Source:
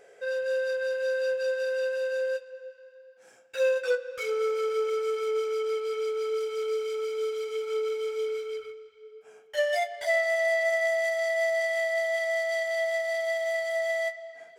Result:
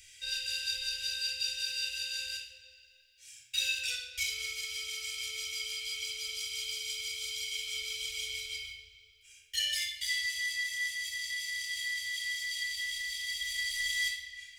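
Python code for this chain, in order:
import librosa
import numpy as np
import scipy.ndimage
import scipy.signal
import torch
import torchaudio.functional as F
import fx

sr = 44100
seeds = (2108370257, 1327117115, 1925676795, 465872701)

y = scipy.signal.sosfilt(scipy.signal.cheby2(4, 50, [190.0, 1200.0], 'bandstop', fs=sr, output='sos'), x)
y = fx.rider(y, sr, range_db=10, speed_s=2.0)
y = fx.room_shoebox(y, sr, seeds[0], volume_m3=3800.0, walls='furnished', distance_m=4.6)
y = F.gain(torch.from_numpy(y), 6.0).numpy()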